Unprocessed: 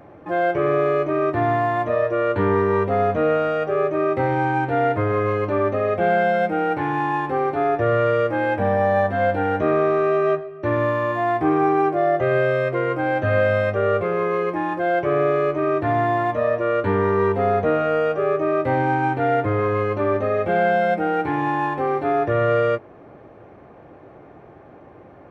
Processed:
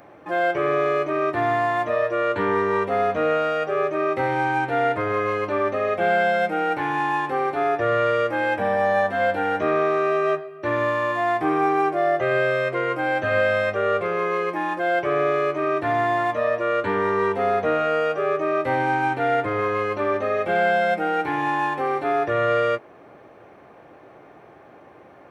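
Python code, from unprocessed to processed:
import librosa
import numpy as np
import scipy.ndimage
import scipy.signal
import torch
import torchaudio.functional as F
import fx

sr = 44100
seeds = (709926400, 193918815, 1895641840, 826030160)

y = fx.tilt_eq(x, sr, slope=2.5)
y = fx.hum_notches(y, sr, base_hz=50, count=2)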